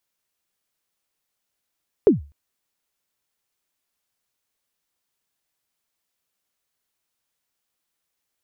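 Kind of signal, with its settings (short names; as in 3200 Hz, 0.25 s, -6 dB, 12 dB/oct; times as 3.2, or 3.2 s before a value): kick drum length 0.25 s, from 470 Hz, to 72 Hz, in 0.14 s, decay 0.32 s, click off, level -6 dB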